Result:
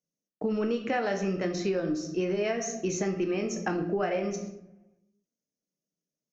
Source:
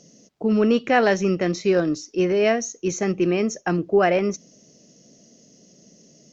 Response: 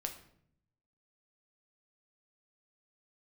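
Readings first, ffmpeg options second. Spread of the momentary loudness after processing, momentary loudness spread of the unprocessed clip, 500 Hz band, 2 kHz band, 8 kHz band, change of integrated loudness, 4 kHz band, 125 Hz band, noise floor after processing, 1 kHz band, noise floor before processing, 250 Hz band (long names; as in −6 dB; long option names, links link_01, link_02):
3 LU, 7 LU, −9.0 dB, −10.0 dB, can't be measured, −9.0 dB, −8.0 dB, −7.5 dB, below −85 dBFS, −9.5 dB, −55 dBFS, −8.0 dB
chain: -filter_complex "[0:a]agate=range=-39dB:threshold=-42dB:ratio=16:detection=peak[link_01];[1:a]atrim=start_sample=2205[link_02];[link_01][link_02]afir=irnorm=-1:irlink=0,acompressor=threshold=-26dB:ratio=6"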